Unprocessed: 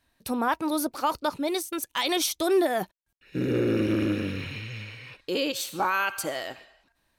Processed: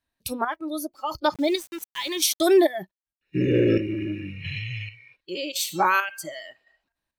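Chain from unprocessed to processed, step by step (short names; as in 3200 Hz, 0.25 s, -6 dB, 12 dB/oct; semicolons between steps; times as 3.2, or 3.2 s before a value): chopper 0.9 Hz, depth 60%, duty 40%; spectral noise reduction 18 dB; 1.34–2.65 sample gate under -44.5 dBFS; gain +5.5 dB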